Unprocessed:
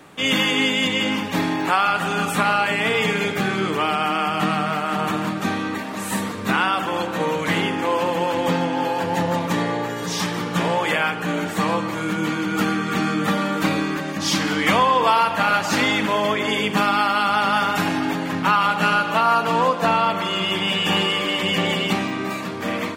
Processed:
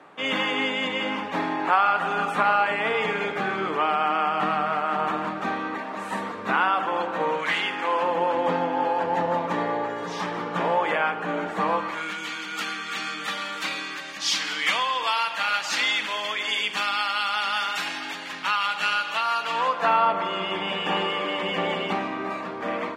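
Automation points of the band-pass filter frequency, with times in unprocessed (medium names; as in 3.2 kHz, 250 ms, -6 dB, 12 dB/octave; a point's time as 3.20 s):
band-pass filter, Q 0.74
7.34 s 910 Hz
7.57 s 2.7 kHz
8.17 s 810 Hz
11.68 s 810 Hz
12.22 s 3.7 kHz
19.38 s 3.7 kHz
20.12 s 820 Hz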